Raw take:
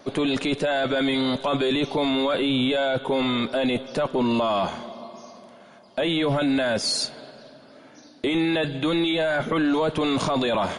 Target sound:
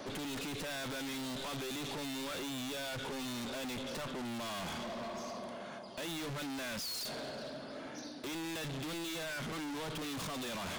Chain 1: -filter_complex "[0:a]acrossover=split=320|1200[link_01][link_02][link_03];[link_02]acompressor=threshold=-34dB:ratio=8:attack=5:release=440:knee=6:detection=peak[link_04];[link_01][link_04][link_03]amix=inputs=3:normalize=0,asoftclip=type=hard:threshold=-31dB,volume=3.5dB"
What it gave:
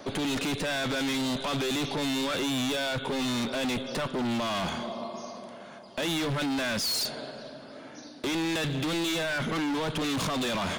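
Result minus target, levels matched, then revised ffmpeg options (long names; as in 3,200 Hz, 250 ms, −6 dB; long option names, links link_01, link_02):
hard clipping: distortion −4 dB
-filter_complex "[0:a]acrossover=split=320|1200[link_01][link_02][link_03];[link_02]acompressor=threshold=-34dB:ratio=8:attack=5:release=440:knee=6:detection=peak[link_04];[link_01][link_04][link_03]amix=inputs=3:normalize=0,asoftclip=type=hard:threshold=-43dB,volume=3.5dB"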